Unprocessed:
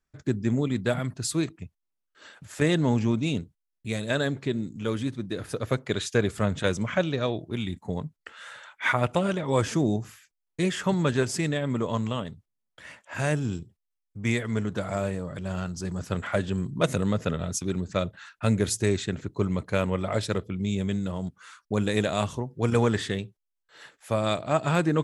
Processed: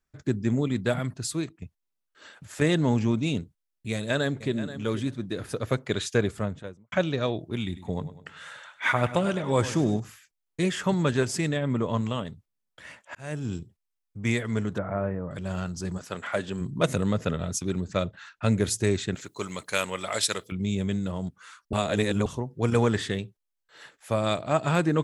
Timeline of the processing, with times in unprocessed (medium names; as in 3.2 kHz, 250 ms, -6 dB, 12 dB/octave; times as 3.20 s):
1.06–1.62 s: fade out, to -7 dB
3.92–4.57 s: echo throw 480 ms, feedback 10%, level -13 dB
6.11–6.92 s: studio fade out
7.65–10.00 s: feedback delay 100 ms, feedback 48%, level -14 dB
11.56–12.01 s: tone controls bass +2 dB, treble -6 dB
13.15–13.57 s: fade in
14.78–15.31 s: low-pass 1.8 kHz 24 dB/octave
15.97–16.60 s: high-pass 640 Hz -> 230 Hz 6 dB/octave
18.05–18.52 s: low-pass 7.8 kHz 24 dB/octave
19.15–20.52 s: tilt EQ +4.5 dB/octave
21.73–22.26 s: reverse